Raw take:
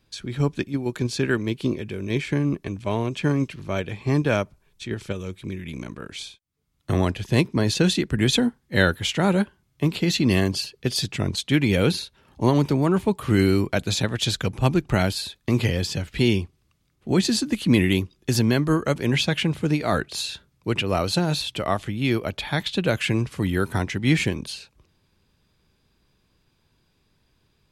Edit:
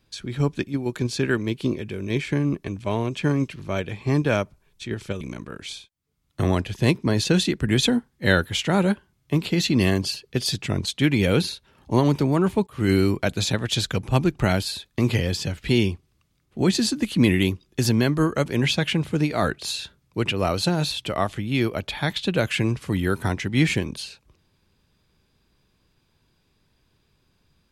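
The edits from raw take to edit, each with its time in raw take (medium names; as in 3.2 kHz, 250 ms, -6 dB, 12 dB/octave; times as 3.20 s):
5.21–5.71 s: delete
13.17–13.43 s: fade in, from -22 dB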